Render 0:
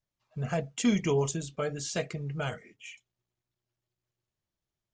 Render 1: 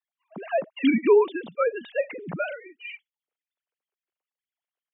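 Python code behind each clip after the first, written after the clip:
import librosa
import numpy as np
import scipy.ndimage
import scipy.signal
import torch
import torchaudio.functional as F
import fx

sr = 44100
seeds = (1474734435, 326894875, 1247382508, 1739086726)

y = fx.sine_speech(x, sr)
y = scipy.signal.sosfilt(scipy.signal.butter(2, 210.0, 'highpass', fs=sr, output='sos'), y)
y = y * librosa.db_to_amplitude(7.0)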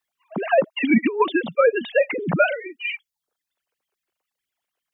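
y = fx.dereverb_blind(x, sr, rt60_s=0.51)
y = fx.over_compress(y, sr, threshold_db=-23.0, ratio=-0.5)
y = y * librosa.db_to_amplitude(8.0)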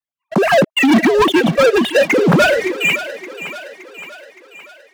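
y = fx.peak_eq(x, sr, hz=100.0, db=9.0, octaves=2.5)
y = fx.leveller(y, sr, passes=5)
y = fx.echo_thinned(y, sr, ms=568, feedback_pct=56, hz=300.0, wet_db=-13)
y = y * librosa.db_to_amplitude(-4.5)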